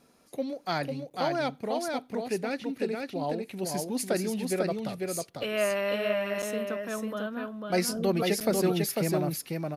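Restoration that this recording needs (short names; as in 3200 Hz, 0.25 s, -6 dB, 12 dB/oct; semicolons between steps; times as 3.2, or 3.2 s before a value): interpolate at 1.1/6.42/8.4, 7.4 ms; inverse comb 0.497 s -3.5 dB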